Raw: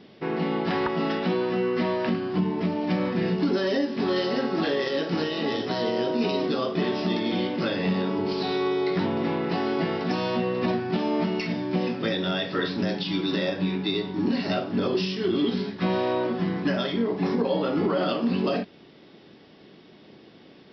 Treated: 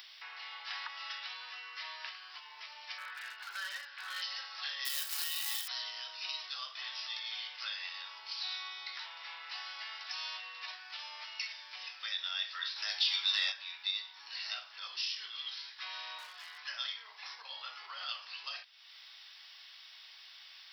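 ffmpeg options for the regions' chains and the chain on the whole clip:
ffmpeg -i in.wav -filter_complex "[0:a]asettb=1/sr,asplit=3[link_01][link_02][link_03];[link_01]atrim=end=2.984[link_04];[link_02]atrim=start=2.98:end=4.22,asetpts=PTS-STARTPTS,afade=type=in:duration=0.004:curve=qsin,afade=type=out:start_time=1.236:duration=0.004:curve=qsin,lowpass=3100,equalizer=frequency=1500:width=4.5:gain=13,asoftclip=type=hard:threshold=-19.5dB[link_05];[link_03]atrim=start=4.216[link_06];[link_04][link_05]acrossfade=duration=0.004:curve1=hsin:curve2=qsin[link_07];[link_07][link_06]acrossfade=duration=0.004:curve1=qsin:curve2=hsin,asettb=1/sr,asplit=3[link_08][link_09][link_10];[link_08]atrim=end=4.854[link_11];[link_09]atrim=start=4.85:end=5.68,asetpts=PTS-STARTPTS,afade=type=in:duration=0.004:curve=qsin,afade=type=out:start_time=0.826:duration=0.004:curve=qsin,acrusher=bits=3:mode=log:mix=0:aa=0.000001,lowshelf=frequency=190:gain=9[link_12];[link_10]atrim=start=5.676[link_13];[link_11][link_12]acrossfade=duration=0.004:curve1=hsin:curve2=qsin[link_14];[link_14][link_13]acrossfade=duration=0.004:curve1=qsin:curve2=hsin,asettb=1/sr,asplit=3[link_15][link_16][link_17];[link_15]atrim=end=12.764[link_18];[link_16]atrim=start=12.76:end=13.52,asetpts=PTS-STARTPTS,afade=type=in:duration=0.004:curve=qsin,afade=type=out:start_time=0.756:duration=0.004:curve=qsin,asplit=2[link_19][link_20];[link_20]adelay=19,volume=-7.5dB[link_21];[link_19][link_21]amix=inputs=2:normalize=0,atrim=end_sample=33516,acontrast=48[link_22];[link_17]atrim=start=13.516[link_23];[link_18][link_22]acrossfade=duration=0.004:curve1=hsin:curve2=qsin[link_24];[link_24][link_23]acrossfade=duration=0.004:curve1=qsin:curve2=hsin,asettb=1/sr,asplit=3[link_25][link_26][link_27];[link_25]atrim=end=16.184[link_28];[link_26]atrim=start=16.18:end=16.58,asetpts=PTS-STARTPTS,afade=type=in:duration=0.004:curve=qsin,afade=type=out:start_time=0.396:duration=0.004:curve=qsin,afreqshift=-17,aeval=exprs='clip(val(0),-1,0.0562)':channel_layout=same[link_29];[link_27]atrim=start=16.576[link_30];[link_28][link_29]acrossfade=duration=0.004:curve1=hsin:curve2=qsin[link_31];[link_31][link_30]acrossfade=duration=0.004:curve1=qsin:curve2=hsin,aderivative,acompressor=mode=upward:threshold=-45dB:ratio=2.5,highpass=frequency=940:width=0.5412,highpass=frequency=940:width=1.3066,volume=2.5dB" out.wav

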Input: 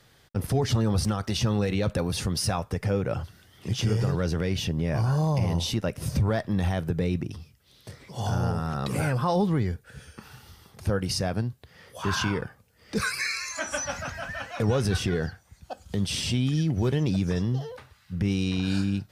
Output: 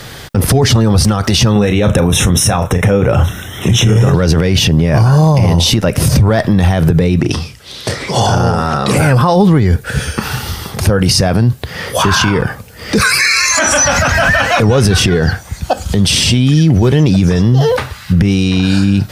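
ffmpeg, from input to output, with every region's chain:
ffmpeg -i in.wav -filter_complex "[0:a]asettb=1/sr,asplit=3[link_01][link_02][link_03];[link_01]atrim=end=1.524[link_04];[link_02]atrim=start=1.52:end=4.14,asetpts=PTS-STARTPTS,afade=type=in:duration=0.004:curve=qsin,afade=type=out:start_time=2.616:duration=0.004:curve=qsin,asuperstop=centerf=4600:order=12:qfactor=3.5,asplit=2[link_05][link_06];[link_06]adelay=34,volume=-9.5dB[link_07];[link_05][link_07]amix=inputs=2:normalize=0,atrim=end_sample=115542[link_08];[link_03]atrim=start=4.136[link_09];[link_04][link_08]acrossfade=duration=0.004:curve1=hsin:curve2=qsin[link_10];[link_10][link_09]acrossfade=duration=0.004:curve1=qsin:curve2=hsin,asettb=1/sr,asplit=3[link_11][link_12][link_13];[link_11]atrim=end=7.194[link_14];[link_12]atrim=start=7.19:end=8.97,asetpts=PTS-STARTPTS,afade=type=in:duration=0.004:curve=qsin,afade=type=out:start_time=1.776:duration=0.004:curve=qsin,lowpass=9100,bass=frequency=250:gain=-7,treble=frequency=4000:gain=1,asplit=2[link_15][link_16];[link_16]adelay=34,volume=-10dB[link_17];[link_15][link_17]amix=inputs=2:normalize=0,atrim=end_sample=78498[link_18];[link_13]atrim=start=8.966[link_19];[link_14][link_18]acrossfade=duration=0.004:curve1=hsin:curve2=qsin[link_20];[link_20][link_19]acrossfade=duration=0.004:curve1=qsin:curve2=hsin,acompressor=threshold=-29dB:ratio=2,alimiter=level_in=30dB:limit=-1dB:release=50:level=0:latency=1,volume=-1.5dB" out.wav

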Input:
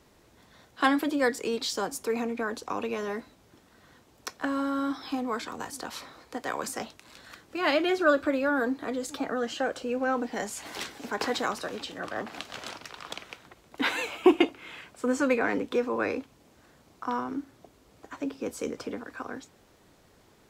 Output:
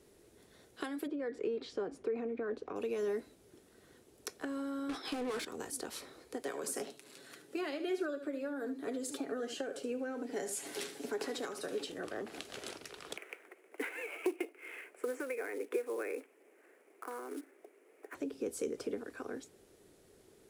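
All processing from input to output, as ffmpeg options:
ffmpeg -i in.wav -filter_complex "[0:a]asettb=1/sr,asplit=3[link_01][link_02][link_03];[link_01]atrim=end=1.074[link_04];[link_02]atrim=start=1.07:end=2.76,asetpts=PTS-STARTPTS,afade=type=in:duration=0.004:curve=qsin,afade=type=out:start_time=1.686:duration=0.004:curve=qsin,lowpass=2100,bandreject=frequency=870:width=18,acompressor=threshold=-28dB:ratio=3:attack=3.2:release=140:knee=1:detection=peak[link_05];[link_03]atrim=start=2.756[link_06];[link_04][link_05]acrossfade=duration=0.004:curve1=hsin:curve2=qsin[link_07];[link_07][link_06]acrossfade=duration=0.004:curve1=qsin:curve2=hsin,asettb=1/sr,asplit=3[link_08][link_09][link_10];[link_08]atrim=end=4.894[link_11];[link_09]atrim=start=4.89:end=5.45,asetpts=PTS-STARTPTS,afade=type=in:duration=0.004:curve=qsin,afade=type=out:start_time=0.556:duration=0.004:curve=qsin,agate=range=-33dB:threshold=-35dB:ratio=3:release=100:detection=peak,asplit=2[link_12][link_13];[link_13]highpass=frequency=720:poles=1,volume=30dB,asoftclip=type=tanh:threshold=-18dB[link_14];[link_12][link_14]amix=inputs=2:normalize=0,lowpass=frequency=3500:poles=1,volume=-6dB[link_15];[link_10]atrim=start=5.446[link_16];[link_11][link_15]acrossfade=duration=0.004:curve1=hsin:curve2=qsin[link_17];[link_17][link_16]acrossfade=duration=0.004:curve1=qsin:curve2=hsin,asettb=1/sr,asplit=3[link_18][link_19][link_20];[link_18]atrim=end=6.434[link_21];[link_19]atrim=start=6.43:end=11.9,asetpts=PTS-STARTPTS,afade=type=in:duration=0.004:curve=qsin,afade=type=out:start_time=5.466:duration=0.004:curve=qsin,highpass=frequency=130:width=0.5412,highpass=frequency=130:width=1.3066,aecho=1:1:7.2:0.38,atrim=end_sample=241227,aecho=1:1:74:0.251,atrim=end_sample=241227[link_22];[link_20]atrim=start=11.896[link_23];[link_21][link_22]acrossfade=duration=0.004:curve1=hsin:curve2=qsin[link_24];[link_24][link_23]acrossfade=duration=0.004:curve1=qsin:curve2=hsin,asettb=1/sr,asplit=3[link_25][link_26][link_27];[link_25]atrim=end=13.174[link_28];[link_26]atrim=start=13.17:end=18.15,asetpts=PTS-STARTPTS,afade=type=in:duration=0.004:curve=qsin,afade=type=out:start_time=4.976:duration=0.004:curve=qsin,highshelf=frequency=3000:width_type=q:width=3:gain=-10,acrusher=bits=5:mode=log:mix=0:aa=0.000001,highpass=frequency=340:width=0.5412,highpass=frequency=340:width=1.3066[link_29];[link_27]atrim=start=18.146[link_30];[link_28][link_29]acrossfade=duration=0.004:curve1=hsin:curve2=qsin[link_31];[link_31][link_30]acrossfade=duration=0.004:curve1=qsin:curve2=hsin,acompressor=threshold=-31dB:ratio=12,equalizer=frequency=400:width_type=o:width=0.67:gain=11,equalizer=frequency=1000:width_type=o:width=0.67:gain=-6,equalizer=frequency=10000:width_type=o:width=0.67:gain=11,volume=-7dB" out.wav

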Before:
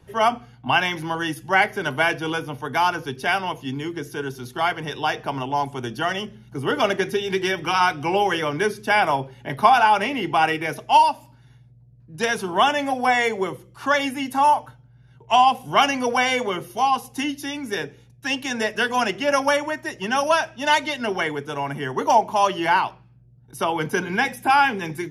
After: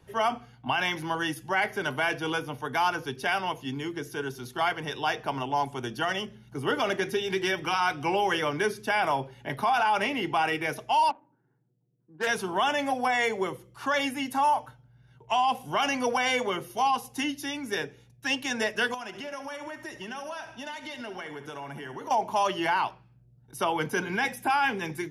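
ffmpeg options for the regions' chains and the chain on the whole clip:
ffmpeg -i in.wav -filter_complex "[0:a]asettb=1/sr,asplit=3[link_01][link_02][link_03];[link_01]atrim=end=11.104[link_04];[link_02]atrim=start=11.1:end=12.27,asetpts=PTS-STARTPTS,afade=type=in:duration=0.004:curve=qsin,afade=type=out:start_time=1.166:duration=0.004:curve=qsin,highpass=frequency=200:width=0.5412,highpass=frequency=200:width=1.3066,equalizer=frequency=240:width_type=q:width=4:gain=-9,equalizer=frequency=340:width_type=q:width=4:gain=4,equalizer=frequency=630:width_type=q:width=4:gain=-8,equalizer=frequency=1500:width_type=q:width=4:gain=6,equalizer=frequency=2300:width_type=q:width=4:gain=-4,lowpass=frequency=2800:width=0.5412,lowpass=frequency=2800:width=1.3066,adynamicsmooth=sensitivity=3:basefreq=610[link_05];[link_03]atrim=start=12.266[link_06];[link_04][link_05]acrossfade=duration=0.004:curve1=hsin:curve2=qsin[link_07];[link_07][link_06]acrossfade=duration=0.004:curve1=qsin:curve2=hsin,asettb=1/sr,asplit=3[link_08][link_09][link_10];[link_08]atrim=end=18.944[link_11];[link_09]atrim=start=18.94:end=22.11,asetpts=PTS-STARTPTS,afade=type=in:duration=0.004:curve=qsin,afade=type=out:start_time=3.166:duration=0.004:curve=qsin,acompressor=threshold=-31dB:ratio=8:attack=3.2:release=140:knee=1:detection=peak,aecho=1:1:71|142|213|284|355:0.251|0.131|0.0679|0.0353|0.0184,atrim=end_sample=139797[link_12];[link_10]atrim=start=22.106[link_13];[link_11][link_12]acrossfade=duration=0.004:curve1=hsin:curve2=qsin[link_14];[link_14][link_13]acrossfade=duration=0.004:curve1=qsin:curve2=hsin,alimiter=limit=-13dB:level=0:latency=1:release=22,lowshelf=frequency=320:gain=-3.5,volume=-3dB" out.wav

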